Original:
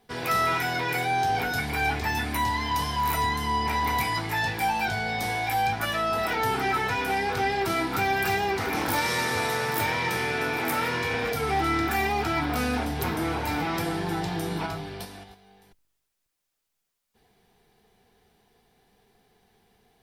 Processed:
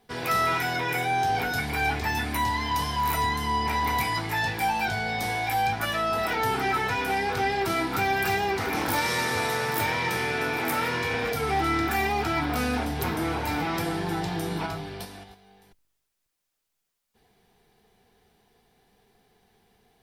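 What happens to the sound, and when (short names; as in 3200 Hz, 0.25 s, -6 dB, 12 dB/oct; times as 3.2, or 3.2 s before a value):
0.76–1.25 notch 4400 Hz, Q 7.5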